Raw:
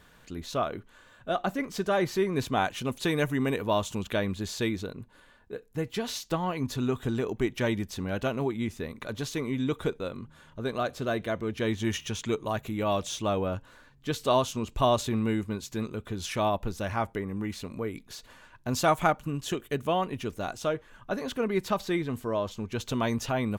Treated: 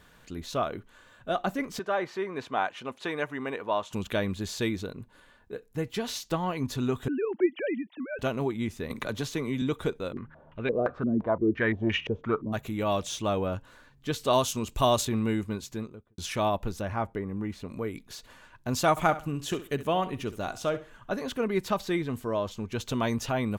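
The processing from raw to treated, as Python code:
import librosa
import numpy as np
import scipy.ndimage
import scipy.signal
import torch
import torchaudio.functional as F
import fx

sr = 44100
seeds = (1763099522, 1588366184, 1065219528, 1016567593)

y = fx.bandpass_q(x, sr, hz=1100.0, q=0.63, at=(1.79, 3.93))
y = fx.sine_speech(y, sr, at=(7.08, 8.19))
y = fx.band_squash(y, sr, depth_pct=70, at=(8.9, 9.62))
y = fx.filter_held_lowpass(y, sr, hz=5.8, low_hz=250.0, high_hz=2500.0, at=(10.12, 12.52), fade=0.02)
y = fx.high_shelf(y, sr, hz=5000.0, db=9.5, at=(14.33, 15.05))
y = fx.studio_fade_out(y, sr, start_s=15.58, length_s=0.6)
y = fx.high_shelf(y, sr, hz=2400.0, db=-10.5, at=(16.81, 17.69))
y = fx.echo_feedback(y, sr, ms=66, feedback_pct=25, wet_db=-14.5, at=(18.9, 21.15))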